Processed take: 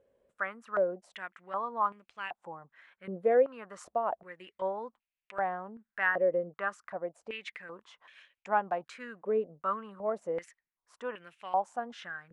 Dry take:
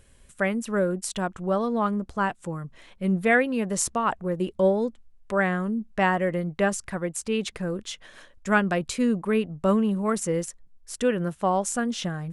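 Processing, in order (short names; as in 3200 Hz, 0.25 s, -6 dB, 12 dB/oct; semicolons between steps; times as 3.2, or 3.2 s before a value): stepped band-pass 2.6 Hz 520–2500 Hz; gain +2 dB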